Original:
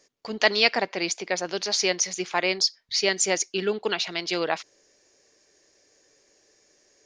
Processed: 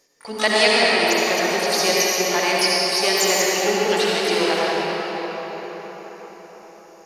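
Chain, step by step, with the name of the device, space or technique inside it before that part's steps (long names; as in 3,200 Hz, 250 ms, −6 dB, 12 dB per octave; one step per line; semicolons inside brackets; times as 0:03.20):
shimmer-style reverb (pitch-shifted copies added +12 semitones −10 dB; convolution reverb RT60 5.6 s, pre-delay 56 ms, DRR −6 dB)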